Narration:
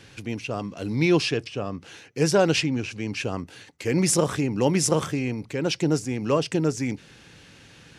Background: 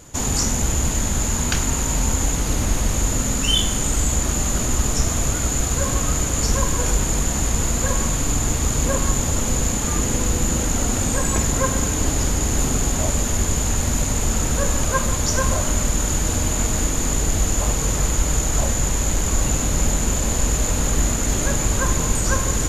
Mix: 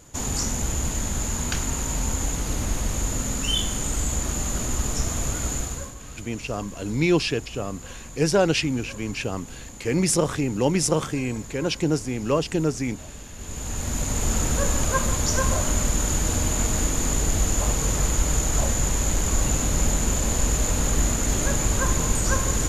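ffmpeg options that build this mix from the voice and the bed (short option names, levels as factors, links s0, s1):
-filter_complex "[0:a]adelay=6000,volume=1[s0];[1:a]volume=3.98,afade=t=out:st=5.52:d=0.42:silence=0.188365,afade=t=in:st=13.36:d=0.97:silence=0.133352[s1];[s0][s1]amix=inputs=2:normalize=0"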